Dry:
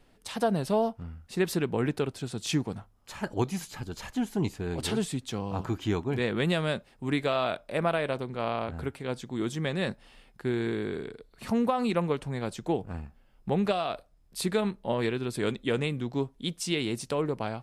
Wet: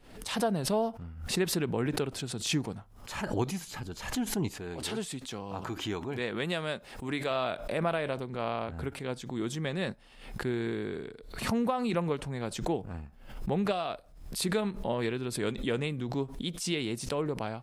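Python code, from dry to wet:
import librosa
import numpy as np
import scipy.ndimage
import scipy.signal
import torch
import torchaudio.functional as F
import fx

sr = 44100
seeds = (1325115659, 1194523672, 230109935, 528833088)

y = fx.low_shelf(x, sr, hz=270.0, db=-8.0, at=(4.51, 7.31))
y = fx.pre_swell(y, sr, db_per_s=77.0)
y = y * 10.0 ** (-3.0 / 20.0)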